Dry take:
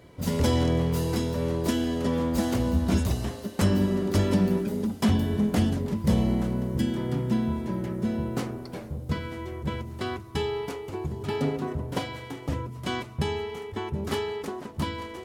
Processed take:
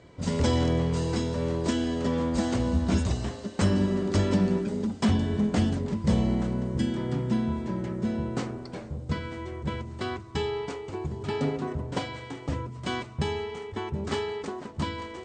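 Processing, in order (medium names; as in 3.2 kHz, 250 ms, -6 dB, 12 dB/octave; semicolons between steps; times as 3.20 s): Chebyshev low-pass 8.7 kHz, order 10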